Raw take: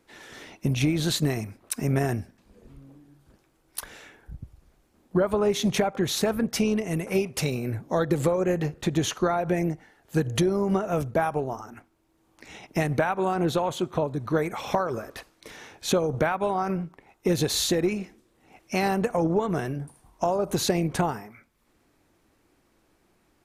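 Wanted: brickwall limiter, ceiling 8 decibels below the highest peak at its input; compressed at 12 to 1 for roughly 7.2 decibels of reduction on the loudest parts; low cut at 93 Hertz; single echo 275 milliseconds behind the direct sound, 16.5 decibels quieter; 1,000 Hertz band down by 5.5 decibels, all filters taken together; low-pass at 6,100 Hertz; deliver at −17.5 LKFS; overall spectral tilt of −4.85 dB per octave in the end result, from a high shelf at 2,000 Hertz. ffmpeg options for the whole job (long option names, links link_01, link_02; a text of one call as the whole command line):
ffmpeg -i in.wav -af "highpass=93,lowpass=6100,equalizer=frequency=1000:width_type=o:gain=-9,highshelf=frequency=2000:gain=4,acompressor=threshold=-27dB:ratio=12,alimiter=limit=-23dB:level=0:latency=1,aecho=1:1:275:0.15,volume=16.5dB" out.wav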